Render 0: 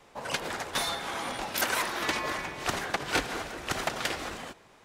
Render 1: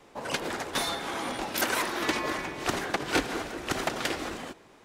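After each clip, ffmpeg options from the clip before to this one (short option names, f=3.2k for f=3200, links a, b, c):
-af "equalizer=f=310:t=o:w=1.1:g=6.5"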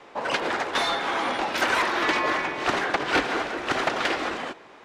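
-filter_complex "[0:a]asplit=2[a][b];[b]highpass=f=720:p=1,volume=16dB,asoftclip=type=tanh:threshold=-11dB[c];[a][c]amix=inputs=2:normalize=0,lowpass=f=5k:p=1,volume=-6dB,aemphasis=mode=reproduction:type=50fm"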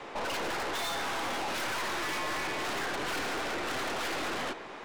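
-af "alimiter=limit=-21.5dB:level=0:latency=1:release=36,aeval=exprs='(tanh(89.1*val(0)+0.4)-tanh(0.4))/89.1':c=same,volume=6.5dB"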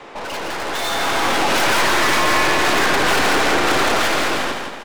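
-af "dynaudnorm=f=280:g=7:m=10.5dB,aecho=1:1:166|332|498|664|830:0.562|0.225|0.09|0.036|0.0144,volume=5dB"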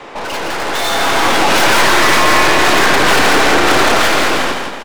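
-filter_complex "[0:a]asplit=2[a][b];[b]adelay=31,volume=-12dB[c];[a][c]amix=inputs=2:normalize=0,volume=5.5dB"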